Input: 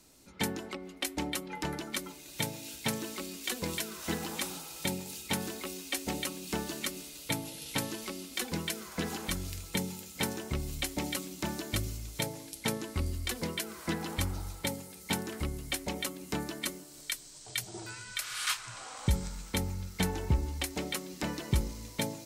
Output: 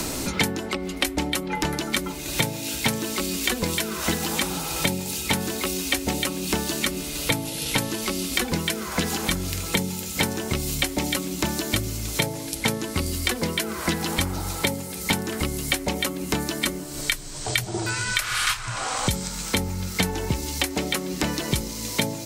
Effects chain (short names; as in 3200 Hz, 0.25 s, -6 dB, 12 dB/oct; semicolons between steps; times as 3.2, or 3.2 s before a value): three-band squash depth 100%; gain +9 dB